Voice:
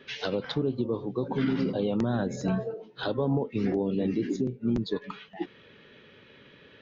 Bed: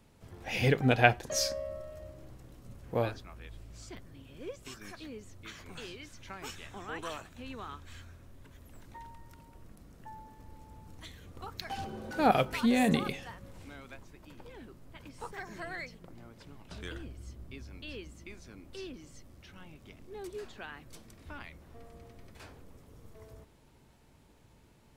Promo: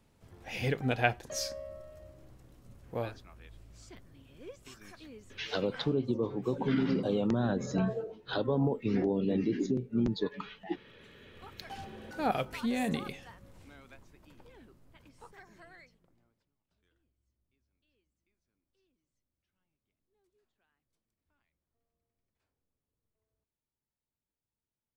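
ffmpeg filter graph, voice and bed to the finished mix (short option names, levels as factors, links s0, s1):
-filter_complex "[0:a]adelay=5300,volume=0.794[s0];[1:a]volume=2.11,afade=t=out:st=5.28:d=0.64:silence=0.251189,afade=t=in:st=11.07:d=0.52:silence=0.266073,afade=t=out:st=14.29:d=2.21:silence=0.0334965[s1];[s0][s1]amix=inputs=2:normalize=0"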